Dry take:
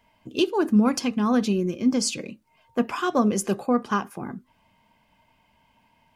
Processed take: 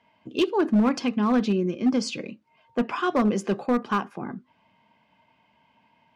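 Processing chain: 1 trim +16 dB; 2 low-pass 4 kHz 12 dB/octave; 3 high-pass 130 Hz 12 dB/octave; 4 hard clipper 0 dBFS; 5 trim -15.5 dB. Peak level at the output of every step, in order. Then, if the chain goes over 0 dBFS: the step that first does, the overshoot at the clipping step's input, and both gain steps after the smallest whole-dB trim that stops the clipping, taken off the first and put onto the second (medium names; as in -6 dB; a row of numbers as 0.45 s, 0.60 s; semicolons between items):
+6.0 dBFS, +6.0 dBFS, +7.0 dBFS, 0.0 dBFS, -15.5 dBFS; step 1, 7.0 dB; step 1 +9 dB, step 5 -8.5 dB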